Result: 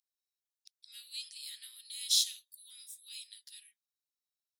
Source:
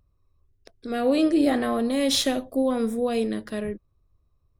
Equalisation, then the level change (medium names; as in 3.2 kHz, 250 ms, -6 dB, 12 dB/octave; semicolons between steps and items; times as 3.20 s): inverse Chebyshev high-pass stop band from 840 Hz, stop band 70 dB; -1.5 dB